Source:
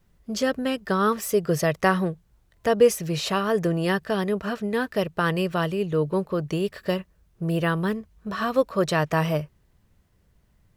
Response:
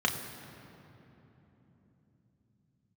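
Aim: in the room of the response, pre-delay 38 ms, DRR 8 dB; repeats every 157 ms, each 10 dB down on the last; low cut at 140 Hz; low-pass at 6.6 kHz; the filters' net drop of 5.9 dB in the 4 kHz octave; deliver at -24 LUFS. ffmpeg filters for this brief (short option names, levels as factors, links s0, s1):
-filter_complex "[0:a]highpass=140,lowpass=6600,equalizer=f=4000:t=o:g=-8,aecho=1:1:157|314|471|628:0.316|0.101|0.0324|0.0104,asplit=2[s0][s1];[1:a]atrim=start_sample=2205,adelay=38[s2];[s1][s2]afir=irnorm=-1:irlink=0,volume=0.126[s3];[s0][s3]amix=inputs=2:normalize=0,volume=1.06"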